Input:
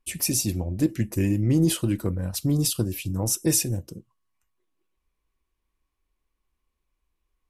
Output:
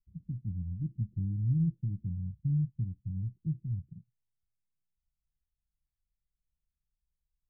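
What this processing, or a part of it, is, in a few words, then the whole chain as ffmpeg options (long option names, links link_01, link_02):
the neighbour's flat through the wall: -af "lowpass=frequency=160:width=0.5412,lowpass=frequency=160:width=1.3066,equalizer=frequency=160:width_type=o:width=0.95:gain=7,volume=-8.5dB"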